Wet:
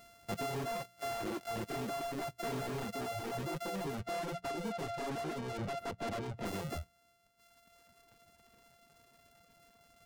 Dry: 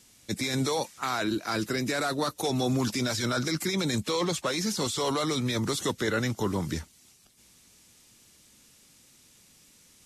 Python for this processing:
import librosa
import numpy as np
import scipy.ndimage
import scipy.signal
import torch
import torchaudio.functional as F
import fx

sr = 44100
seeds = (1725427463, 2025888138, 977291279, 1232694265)

y = np.r_[np.sort(x[:len(x) // 64 * 64].reshape(-1, 64), axis=1).ravel(), x[len(x) // 64 * 64:]]
y = fx.lowpass(y, sr, hz=fx.line((3.86, 3200.0), (6.45, 1300.0)), slope=6, at=(3.86, 6.45), fade=0.02)
y = np.clip(y, -10.0 ** (-33.5 / 20.0), 10.0 ** (-33.5 / 20.0))
y = fx.hum_notches(y, sr, base_hz=60, count=3)
y = fx.dereverb_blind(y, sr, rt60_s=1.7)